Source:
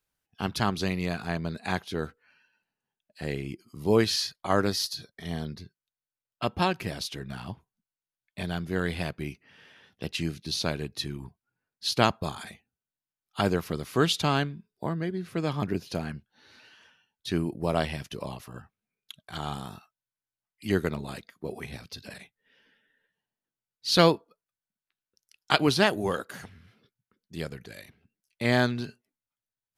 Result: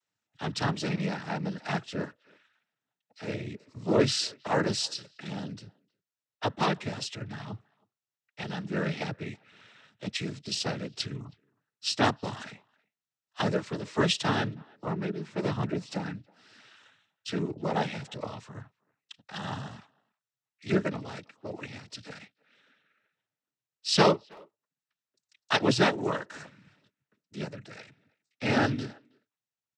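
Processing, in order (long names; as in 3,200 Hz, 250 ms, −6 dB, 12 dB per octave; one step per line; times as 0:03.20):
cochlear-implant simulation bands 12
far-end echo of a speakerphone 320 ms, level −27 dB
level −1 dB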